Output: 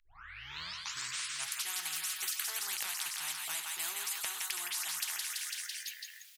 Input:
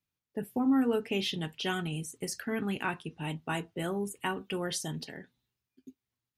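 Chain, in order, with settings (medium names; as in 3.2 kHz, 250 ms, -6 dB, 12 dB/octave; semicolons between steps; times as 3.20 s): tape start-up on the opening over 1.67 s; inverse Chebyshev high-pass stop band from 580 Hz, stop band 60 dB; compression, threshold -40 dBFS, peak gain reduction 10 dB; feedback delay 167 ms, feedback 58%, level -13 dB; spectrum-flattening compressor 10:1; trim +8.5 dB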